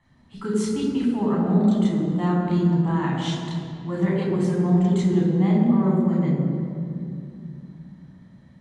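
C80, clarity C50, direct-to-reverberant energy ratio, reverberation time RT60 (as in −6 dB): 2.0 dB, 0.5 dB, −4.5 dB, 2.6 s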